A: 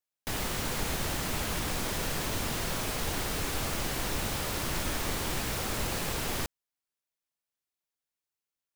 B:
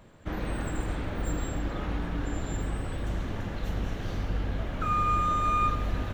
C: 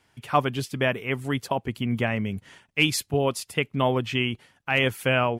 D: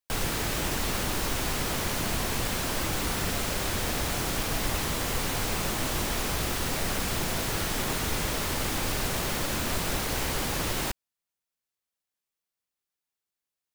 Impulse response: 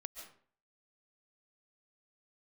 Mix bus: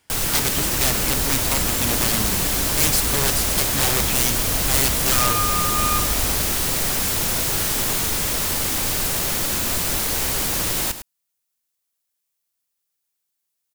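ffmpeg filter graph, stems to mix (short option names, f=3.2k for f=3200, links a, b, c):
-filter_complex "[0:a]adelay=1600,volume=-2.5dB[a];[1:a]adelay=300,volume=1dB[b];[2:a]aeval=exprs='(mod(8.41*val(0)+1,2)-1)/8.41':c=same,volume=-1.5dB[c];[3:a]volume=2dB,asplit=2[d][e];[e]volume=-11.5dB,aecho=0:1:104:1[f];[a][b][c][d][f]amix=inputs=5:normalize=0,highshelf=f=4.9k:g=11"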